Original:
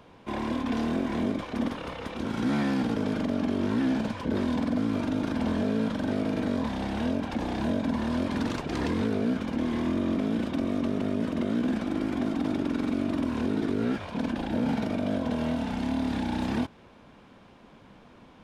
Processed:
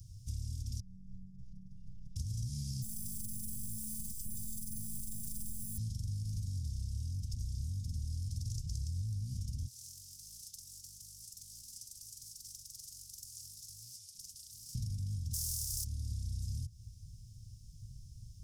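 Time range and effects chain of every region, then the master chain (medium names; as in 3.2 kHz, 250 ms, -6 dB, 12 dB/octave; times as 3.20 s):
0.80–2.16 s: compression 12:1, threshold -34 dBFS + Savitzky-Golay filter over 65 samples + robot voice 188 Hz
2.82–5.78 s: band-stop 4.2 kHz + robot voice 215 Hz + careless resampling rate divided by 4×, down filtered, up hold
9.67–14.75 s: differentiator + loudspeaker Doppler distortion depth 0.35 ms
15.33–15.83 s: spectral contrast reduction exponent 0.38 + peaking EQ 500 Hz -12 dB 1.7 oct
whole clip: Chebyshev band-stop 120–5200 Hz, order 4; peaking EQ 4 kHz -6 dB 0.76 oct; compression 6:1, threshold -48 dBFS; trim +12.5 dB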